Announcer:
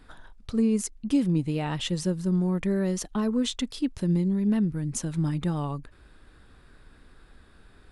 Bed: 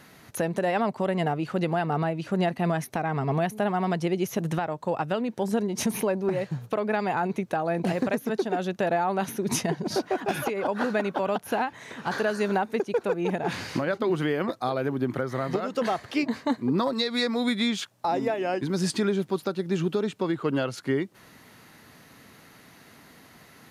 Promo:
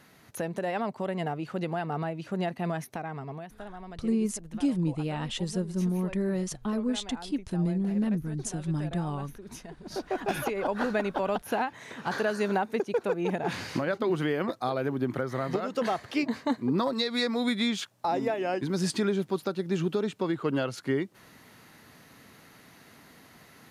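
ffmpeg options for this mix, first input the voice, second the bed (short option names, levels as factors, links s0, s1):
-filter_complex "[0:a]adelay=3500,volume=0.668[s0];[1:a]volume=3.16,afade=t=out:st=2.82:d=0.64:silence=0.251189,afade=t=in:st=9.8:d=0.43:silence=0.16788[s1];[s0][s1]amix=inputs=2:normalize=0"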